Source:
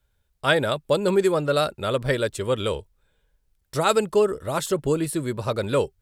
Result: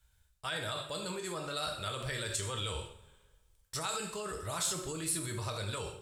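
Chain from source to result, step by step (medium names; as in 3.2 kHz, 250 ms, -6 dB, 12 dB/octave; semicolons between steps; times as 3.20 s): reverse; compression 4:1, threshold -29 dBFS, peak gain reduction 13 dB; reverse; two-slope reverb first 0.49 s, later 1.5 s, DRR 2.5 dB; dynamic bell 4.8 kHz, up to +5 dB, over -51 dBFS, Q 0.75; peak limiter -24.5 dBFS, peak gain reduction 10 dB; graphic EQ 250/500/8000 Hz -9/-8/+6 dB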